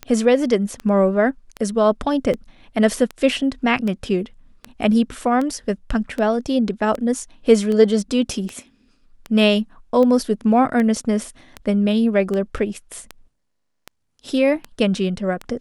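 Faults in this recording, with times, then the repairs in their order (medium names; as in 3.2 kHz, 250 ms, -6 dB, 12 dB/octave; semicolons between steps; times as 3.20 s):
tick 78 rpm -14 dBFS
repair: de-click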